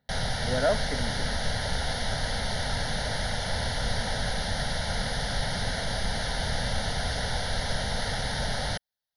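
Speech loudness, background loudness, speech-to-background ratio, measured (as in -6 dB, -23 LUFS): -31.0 LUFS, -30.0 LUFS, -1.0 dB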